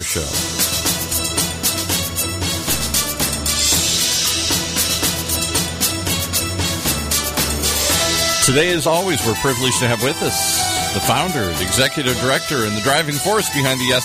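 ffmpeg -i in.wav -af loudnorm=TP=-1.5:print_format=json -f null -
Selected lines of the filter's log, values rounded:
"input_i" : "-16.5",
"input_tp" : "-2.2",
"input_lra" : "1.5",
"input_thresh" : "-26.5",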